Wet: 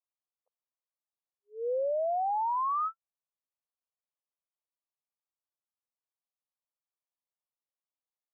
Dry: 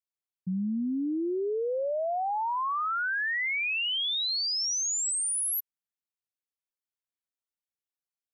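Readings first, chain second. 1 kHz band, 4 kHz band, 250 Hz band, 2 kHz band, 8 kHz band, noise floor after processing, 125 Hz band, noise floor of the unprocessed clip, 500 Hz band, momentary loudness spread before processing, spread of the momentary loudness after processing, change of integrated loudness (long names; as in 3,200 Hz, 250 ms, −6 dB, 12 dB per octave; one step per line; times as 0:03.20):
−0.5 dB, below −40 dB, below −40 dB, below −40 dB, below −40 dB, below −85 dBFS, can't be measured, below −85 dBFS, −2.5 dB, 4 LU, 8 LU, −3.0 dB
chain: linear-phase brick-wall band-pass 460–1,300 Hz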